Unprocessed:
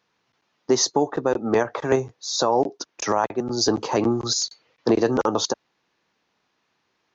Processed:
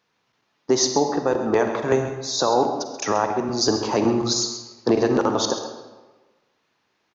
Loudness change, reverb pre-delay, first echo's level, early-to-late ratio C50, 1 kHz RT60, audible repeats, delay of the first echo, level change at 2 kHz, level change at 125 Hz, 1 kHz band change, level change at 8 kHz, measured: +1.0 dB, 37 ms, −11.5 dB, 5.5 dB, 1.3 s, 1, 132 ms, +1.0 dB, +1.5 dB, +1.5 dB, can't be measured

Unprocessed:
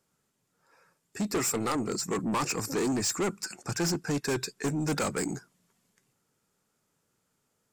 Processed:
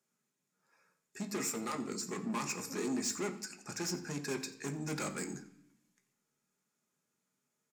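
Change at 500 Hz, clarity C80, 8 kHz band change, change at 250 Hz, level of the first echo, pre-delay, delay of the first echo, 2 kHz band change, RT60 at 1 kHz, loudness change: −9.0 dB, 14.5 dB, −6.5 dB, −7.5 dB, −18.0 dB, 3 ms, 87 ms, −7.0 dB, 0.65 s, −7.5 dB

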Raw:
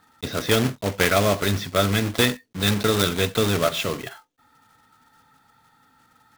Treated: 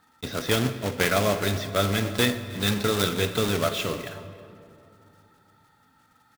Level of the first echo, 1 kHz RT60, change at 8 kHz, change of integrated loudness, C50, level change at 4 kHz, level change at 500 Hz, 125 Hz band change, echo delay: −21.5 dB, 2.4 s, −3.0 dB, −3.0 dB, 11.0 dB, −3.0 dB, −3.0 dB, −3.0 dB, 318 ms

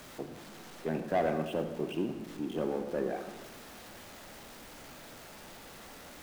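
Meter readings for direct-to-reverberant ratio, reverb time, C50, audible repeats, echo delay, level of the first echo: 7.0 dB, 1.1 s, 8.0 dB, no echo audible, no echo audible, no echo audible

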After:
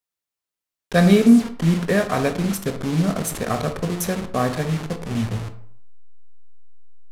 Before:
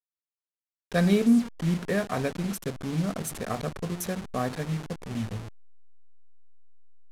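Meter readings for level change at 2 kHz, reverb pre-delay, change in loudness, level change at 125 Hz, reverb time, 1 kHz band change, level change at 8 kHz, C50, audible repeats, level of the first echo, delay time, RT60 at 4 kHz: +8.0 dB, 16 ms, +8.0 dB, +8.0 dB, 0.60 s, +8.5 dB, +8.0 dB, 11.5 dB, no echo audible, no echo audible, no echo audible, 0.35 s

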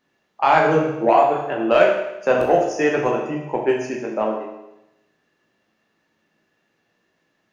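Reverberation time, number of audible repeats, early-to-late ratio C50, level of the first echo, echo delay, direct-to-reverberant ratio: 0.90 s, no echo audible, 4.0 dB, no echo audible, no echo audible, −1.0 dB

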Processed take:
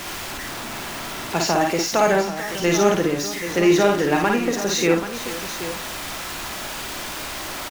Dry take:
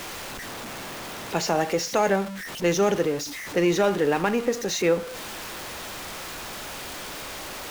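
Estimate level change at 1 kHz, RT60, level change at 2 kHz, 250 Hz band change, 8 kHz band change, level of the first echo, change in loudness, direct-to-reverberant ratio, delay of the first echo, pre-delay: +5.0 dB, no reverb audible, +5.5 dB, +5.5 dB, +5.5 dB, −3.0 dB, +4.5 dB, no reverb audible, 54 ms, no reverb audible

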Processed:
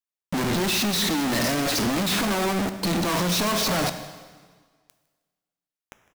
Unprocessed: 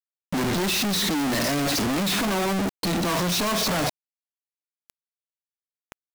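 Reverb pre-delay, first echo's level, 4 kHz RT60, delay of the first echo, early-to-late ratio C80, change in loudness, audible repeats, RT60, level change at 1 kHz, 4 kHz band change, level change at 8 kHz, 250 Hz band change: 4 ms, −21.0 dB, 1.5 s, 157 ms, 12.0 dB, +0.5 dB, 1, 1.6 s, +0.5 dB, +0.5 dB, +0.5 dB, 0.0 dB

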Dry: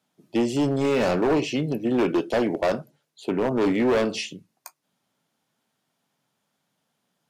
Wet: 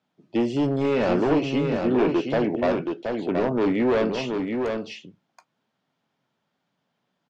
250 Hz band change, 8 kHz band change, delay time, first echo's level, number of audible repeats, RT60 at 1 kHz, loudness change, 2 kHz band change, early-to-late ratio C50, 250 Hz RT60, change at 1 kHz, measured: +1.0 dB, can't be measured, 725 ms, −5.0 dB, 1, no reverb audible, 0.0 dB, −0.5 dB, no reverb audible, no reverb audible, +0.5 dB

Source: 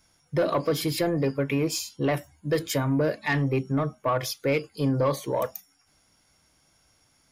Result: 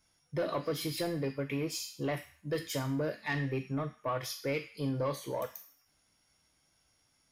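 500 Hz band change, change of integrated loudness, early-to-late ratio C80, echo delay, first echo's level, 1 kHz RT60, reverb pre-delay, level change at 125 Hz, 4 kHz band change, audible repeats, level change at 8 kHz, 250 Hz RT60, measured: −9.0 dB, −8.5 dB, 14.0 dB, no echo audible, no echo audible, 0.55 s, 5 ms, −9.0 dB, −6.5 dB, no echo audible, −7.5 dB, 0.50 s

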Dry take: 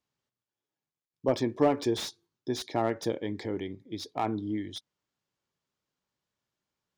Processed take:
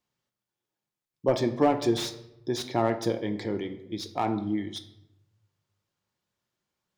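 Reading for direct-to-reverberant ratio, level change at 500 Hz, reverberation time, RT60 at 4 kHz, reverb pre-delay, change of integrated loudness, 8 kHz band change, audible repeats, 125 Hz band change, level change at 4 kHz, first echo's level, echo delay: 6.5 dB, +2.5 dB, 0.85 s, 0.55 s, 5 ms, +3.0 dB, +2.5 dB, no echo audible, +4.0 dB, +2.5 dB, no echo audible, no echo audible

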